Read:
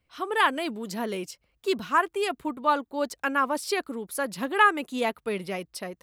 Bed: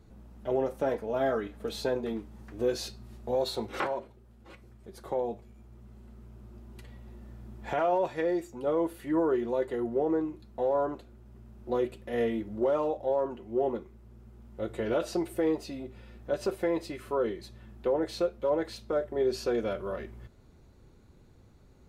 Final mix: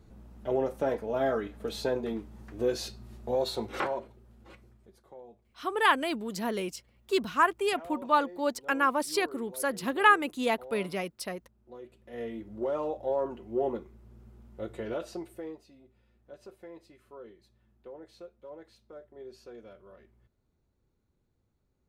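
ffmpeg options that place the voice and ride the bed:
-filter_complex "[0:a]adelay=5450,volume=-1dB[a];[1:a]volume=17dB,afade=t=out:st=4.38:d=0.65:silence=0.125893,afade=t=in:st=11.82:d=1.39:silence=0.141254,afade=t=out:st=14.25:d=1.39:silence=0.133352[b];[a][b]amix=inputs=2:normalize=0"

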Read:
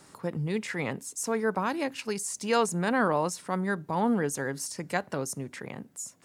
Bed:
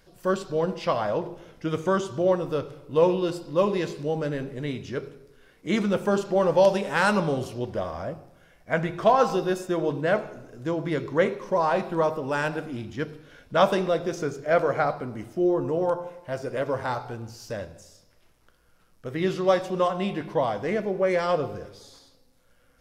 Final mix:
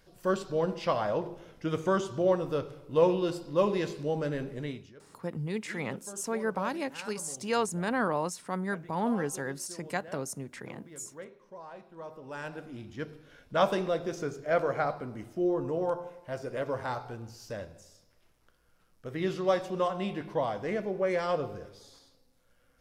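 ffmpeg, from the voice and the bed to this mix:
-filter_complex "[0:a]adelay=5000,volume=-3.5dB[a];[1:a]volume=14dB,afade=t=out:st=4.57:d=0.37:silence=0.105925,afade=t=in:st=11.95:d=1.37:silence=0.133352[b];[a][b]amix=inputs=2:normalize=0"

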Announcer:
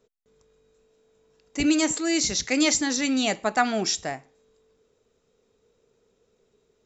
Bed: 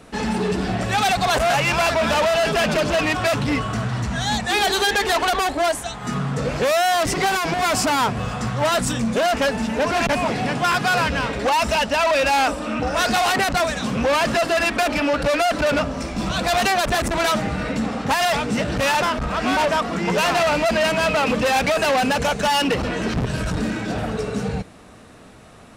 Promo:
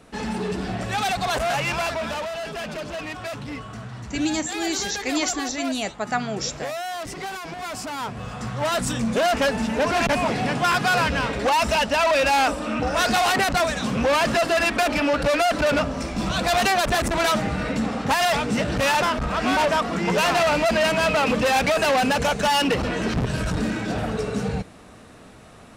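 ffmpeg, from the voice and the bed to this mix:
-filter_complex "[0:a]adelay=2550,volume=-3dB[a];[1:a]volume=6dB,afade=t=out:st=1.68:d=0.62:silence=0.446684,afade=t=in:st=7.91:d=1.33:silence=0.281838[b];[a][b]amix=inputs=2:normalize=0"

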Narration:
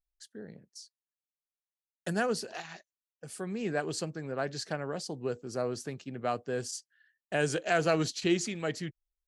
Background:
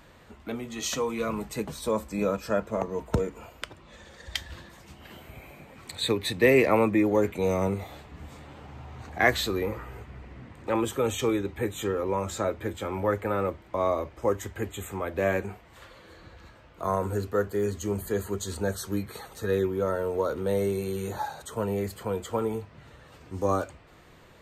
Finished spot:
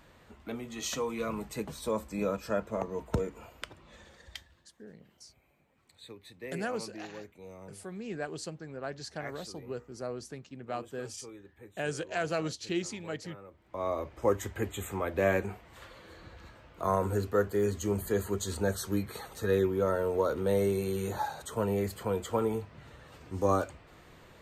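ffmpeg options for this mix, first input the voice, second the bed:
-filter_complex "[0:a]adelay=4450,volume=-5dB[a];[1:a]volume=17dB,afade=t=out:st=3.98:d=0.55:silence=0.125893,afade=t=in:st=13.5:d=0.8:silence=0.0841395[b];[a][b]amix=inputs=2:normalize=0"

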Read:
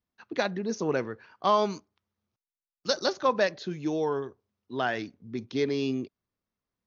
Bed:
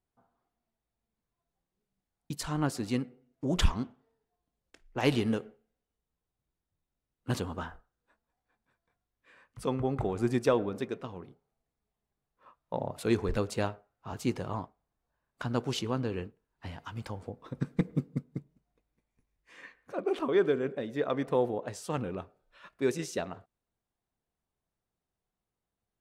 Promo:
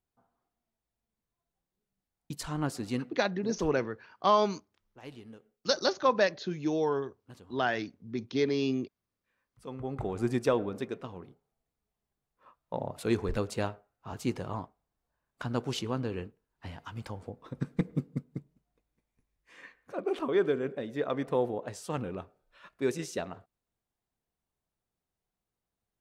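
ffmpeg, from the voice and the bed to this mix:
-filter_complex "[0:a]adelay=2800,volume=-0.5dB[a];[1:a]volume=17dB,afade=t=out:st=3.13:d=0.43:silence=0.125893,afade=t=in:st=9.54:d=0.65:silence=0.112202[b];[a][b]amix=inputs=2:normalize=0"

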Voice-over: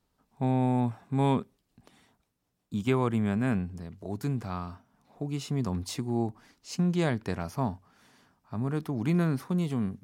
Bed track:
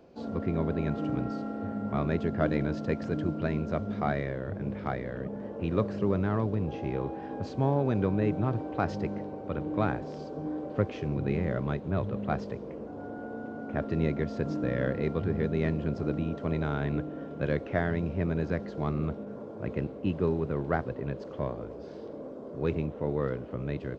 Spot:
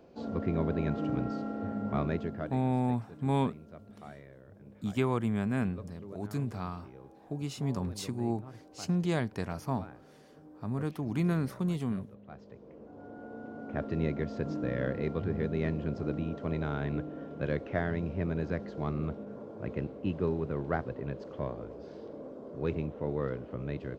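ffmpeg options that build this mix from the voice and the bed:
-filter_complex "[0:a]adelay=2100,volume=-3dB[a];[1:a]volume=15dB,afade=t=out:st=1.96:d=0.62:silence=0.125893,afade=t=in:st=12.32:d=1.49:silence=0.158489[b];[a][b]amix=inputs=2:normalize=0"

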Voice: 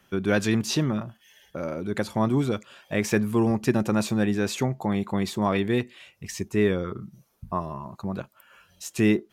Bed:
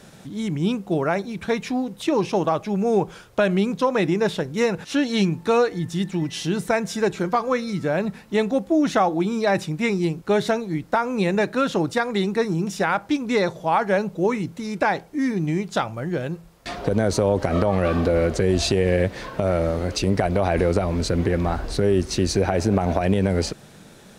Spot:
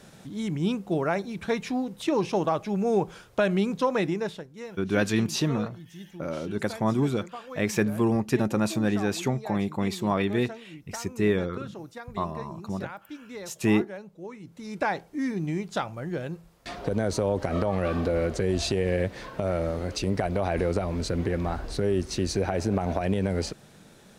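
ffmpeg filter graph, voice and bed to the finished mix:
-filter_complex "[0:a]adelay=4650,volume=-1.5dB[a];[1:a]volume=9dB,afade=t=out:st=3.94:d=0.55:silence=0.177828,afade=t=in:st=14.4:d=0.42:silence=0.223872[b];[a][b]amix=inputs=2:normalize=0"

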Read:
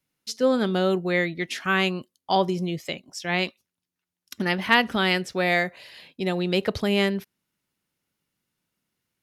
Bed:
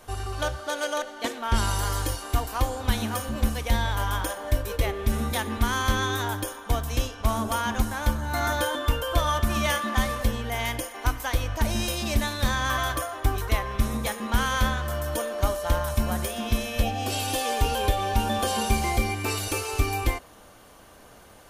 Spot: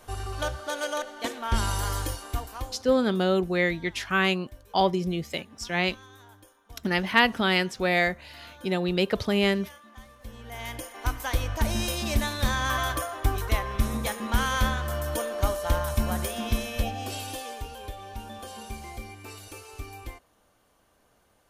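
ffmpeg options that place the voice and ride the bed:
-filter_complex "[0:a]adelay=2450,volume=-1dB[a];[1:a]volume=20.5dB,afade=t=out:st=1.95:d=0.99:silence=0.0841395,afade=t=in:st=10.19:d=1.18:silence=0.0749894,afade=t=out:st=16.43:d=1.25:silence=0.199526[b];[a][b]amix=inputs=2:normalize=0"

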